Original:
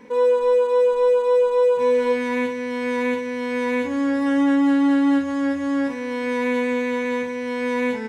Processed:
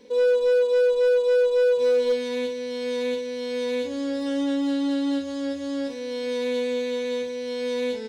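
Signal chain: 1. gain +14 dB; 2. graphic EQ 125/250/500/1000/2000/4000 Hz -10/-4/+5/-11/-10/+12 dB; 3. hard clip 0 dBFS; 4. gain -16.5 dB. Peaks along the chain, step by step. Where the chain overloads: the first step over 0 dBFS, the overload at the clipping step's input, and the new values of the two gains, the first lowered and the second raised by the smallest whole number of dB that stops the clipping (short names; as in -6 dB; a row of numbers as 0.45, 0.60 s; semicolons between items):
+3.0, +3.5, 0.0, -16.5 dBFS; step 1, 3.5 dB; step 1 +10 dB, step 4 -12.5 dB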